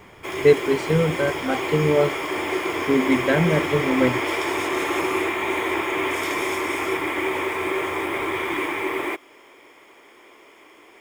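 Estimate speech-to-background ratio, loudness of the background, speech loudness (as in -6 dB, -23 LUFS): 3.0 dB, -25.0 LUFS, -22.0 LUFS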